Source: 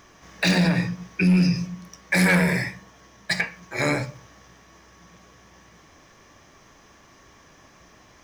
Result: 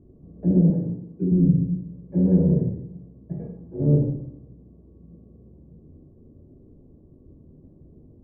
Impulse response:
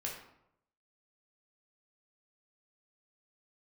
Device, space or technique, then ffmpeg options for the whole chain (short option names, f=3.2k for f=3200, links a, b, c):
next room: -filter_complex "[0:a]lowpass=f=360:w=0.5412,lowpass=f=360:w=1.3066[a];[1:a]atrim=start_sample=2205[b];[a][b]afir=irnorm=-1:irlink=0,asettb=1/sr,asplit=3[c][d][e];[c]atrim=end=0.704[f];[d]atrim=start=0.7:end=1.32,asetpts=PTS-STARTPTS,afade=t=in:d=0.004:c=qsin,afade=t=out:st=0.616:d=0.004:c=qsin,highpass=f=300:p=1[g];[e]atrim=start=1.316[h];[f][g]acrossfade=d=0.004:c1=hsin:c2=qsin[i];[i][h]acrossfade=d=0.004:c1=qsin:c2=hsin,volume=8dB"